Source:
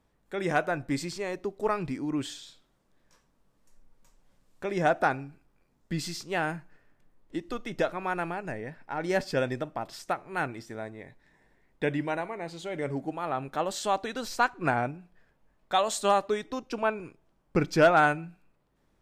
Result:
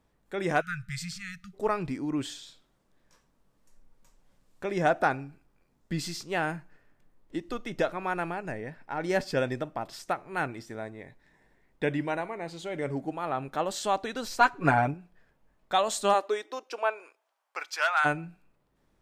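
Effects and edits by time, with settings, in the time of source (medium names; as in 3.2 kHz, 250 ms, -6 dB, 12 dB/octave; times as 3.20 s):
0.61–1.54 s: spectral selection erased 200–1200 Hz
14.40–14.94 s: comb 7.1 ms, depth 97%
16.13–18.04 s: high-pass 280 Hz -> 1.1 kHz 24 dB/octave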